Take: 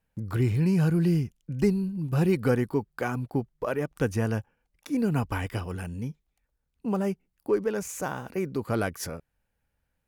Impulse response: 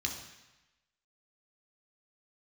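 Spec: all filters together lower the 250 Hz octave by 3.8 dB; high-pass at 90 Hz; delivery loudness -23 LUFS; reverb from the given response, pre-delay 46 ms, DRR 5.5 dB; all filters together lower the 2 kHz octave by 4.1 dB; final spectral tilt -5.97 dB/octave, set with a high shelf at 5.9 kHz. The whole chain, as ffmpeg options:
-filter_complex "[0:a]highpass=90,equalizer=f=250:t=o:g=-5.5,equalizer=f=2000:t=o:g=-6.5,highshelf=f=5900:g=5,asplit=2[s0][s1];[1:a]atrim=start_sample=2205,adelay=46[s2];[s1][s2]afir=irnorm=-1:irlink=0,volume=0.376[s3];[s0][s3]amix=inputs=2:normalize=0,volume=2.24"

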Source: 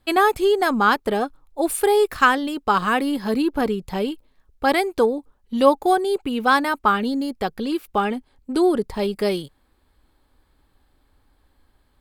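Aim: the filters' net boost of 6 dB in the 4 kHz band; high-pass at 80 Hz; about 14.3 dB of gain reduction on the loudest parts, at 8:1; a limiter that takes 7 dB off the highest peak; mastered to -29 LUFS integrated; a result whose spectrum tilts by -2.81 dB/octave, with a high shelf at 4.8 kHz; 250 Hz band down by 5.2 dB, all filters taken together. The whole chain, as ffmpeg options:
-af "highpass=80,equalizer=f=250:t=o:g=-7,equalizer=f=4000:t=o:g=4,highshelf=f=4800:g=8.5,acompressor=threshold=0.0562:ratio=8,volume=1.33,alimiter=limit=0.141:level=0:latency=1"

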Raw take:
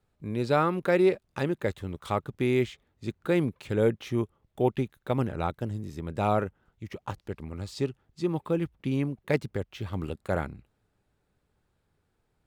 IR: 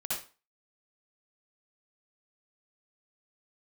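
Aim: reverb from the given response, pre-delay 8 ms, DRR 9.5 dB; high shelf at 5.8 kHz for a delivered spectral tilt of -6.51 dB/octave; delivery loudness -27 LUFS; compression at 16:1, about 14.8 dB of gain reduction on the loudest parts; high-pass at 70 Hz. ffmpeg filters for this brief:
-filter_complex "[0:a]highpass=70,highshelf=f=5800:g=-9,acompressor=threshold=0.0224:ratio=16,asplit=2[s0][s1];[1:a]atrim=start_sample=2205,adelay=8[s2];[s1][s2]afir=irnorm=-1:irlink=0,volume=0.211[s3];[s0][s3]amix=inputs=2:normalize=0,volume=4.47"

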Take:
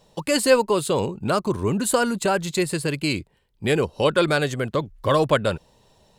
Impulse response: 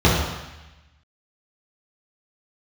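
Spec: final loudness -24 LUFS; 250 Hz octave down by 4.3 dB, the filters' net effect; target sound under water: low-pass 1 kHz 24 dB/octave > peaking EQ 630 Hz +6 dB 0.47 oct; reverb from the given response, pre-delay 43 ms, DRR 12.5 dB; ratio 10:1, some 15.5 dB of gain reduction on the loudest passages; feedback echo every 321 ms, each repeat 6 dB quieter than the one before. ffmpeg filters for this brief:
-filter_complex "[0:a]equalizer=f=250:t=o:g=-6.5,acompressor=threshold=0.0355:ratio=10,aecho=1:1:321|642|963|1284|1605|1926:0.501|0.251|0.125|0.0626|0.0313|0.0157,asplit=2[s0][s1];[1:a]atrim=start_sample=2205,adelay=43[s2];[s1][s2]afir=irnorm=-1:irlink=0,volume=0.0168[s3];[s0][s3]amix=inputs=2:normalize=0,lowpass=f=1000:w=0.5412,lowpass=f=1000:w=1.3066,equalizer=f=630:t=o:w=0.47:g=6,volume=2.51"

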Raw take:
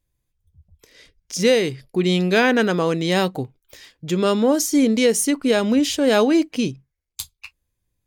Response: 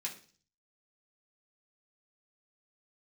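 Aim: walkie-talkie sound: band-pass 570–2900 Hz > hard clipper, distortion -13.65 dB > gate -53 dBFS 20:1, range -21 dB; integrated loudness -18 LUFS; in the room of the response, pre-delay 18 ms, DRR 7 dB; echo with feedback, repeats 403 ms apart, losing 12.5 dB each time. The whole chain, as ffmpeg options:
-filter_complex "[0:a]aecho=1:1:403|806|1209:0.237|0.0569|0.0137,asplit=2[s0][s1];[1:a]atrim=start_sample=2205,adelay=18[s2];[s1][s2]afir=irnorm=-1:irlink=0,volume=0.422[s3];[s0][s3]amix=inputs=2:normalize=0,highpass=570,lowpass=2900,asoftclip=type=hard:threshold=0.168,agate=range=0.0891:threshold=0.00224:ratio=20,volume=2.37"

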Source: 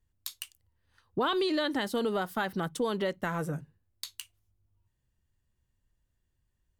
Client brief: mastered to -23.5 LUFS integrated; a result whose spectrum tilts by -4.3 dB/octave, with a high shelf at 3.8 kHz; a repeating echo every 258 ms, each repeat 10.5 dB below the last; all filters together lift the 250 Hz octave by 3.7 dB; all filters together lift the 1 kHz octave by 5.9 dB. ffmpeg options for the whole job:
-af "equalizer=f=250:t=o:g=4.5,equalizer=f=1000:t=o:g=6.5,highshelf=f=3800:g=7,aecho=1:1:258|516|774:0.299|0.0896|0.0269,volume=1.78"

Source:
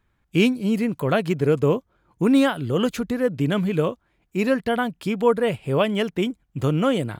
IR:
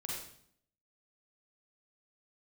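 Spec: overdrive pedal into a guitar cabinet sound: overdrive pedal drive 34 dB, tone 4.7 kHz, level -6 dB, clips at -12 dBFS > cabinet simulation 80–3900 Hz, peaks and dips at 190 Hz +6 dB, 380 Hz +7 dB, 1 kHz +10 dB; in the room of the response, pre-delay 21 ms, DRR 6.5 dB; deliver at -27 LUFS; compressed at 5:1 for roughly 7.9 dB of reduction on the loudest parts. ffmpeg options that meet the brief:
-filter_complex "[0:a]acompressor=threshold=0.0794:ratio=5,asplit=2[s0][s1];[1:a]atrim=start_sample=2205,adelay=21[s2];[s1][s2]afir=irnorm=-1:irlink=0,volume=0.447[s3];[s0][s3]amix=inputs=2:normalize=0,asplit=2[s4][s5];[s5]highpass=f=720:p=1,volume=50.1,asoftclip=type=tanh:threshold=0.251[s6];[s4][s6]amix=inputs=2:normalize=0,lowpass=f=4700:p=1,volume=0.501,highpass=80,equalizer=f=190:t=q:w=4:g=6,equalizer=f=380:t=q:w=4:g=7,equalizer=f=1000:t=q:w=4:g=10,lowpass=f=3900:w=0.5412,lowpass=f=3900:w=1.3066,volume=0.282"

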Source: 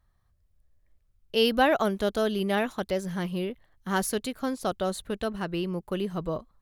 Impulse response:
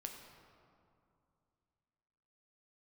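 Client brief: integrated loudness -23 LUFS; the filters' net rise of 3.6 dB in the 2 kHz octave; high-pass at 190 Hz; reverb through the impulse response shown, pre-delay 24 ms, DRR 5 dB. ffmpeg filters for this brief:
-filter_complex "[0:a]highpass=190,equalizer=f=2000:t=o:g=5,asplit=2[s0][s1];[1:a]atrim=start_sample=2205,adelay=24[s2];[s1][s2]afir=irnorm=-1:irlink=0,volume=0.794[s3];[s0][s3]amix=inputs=2:normalize=0,volume=1.58"

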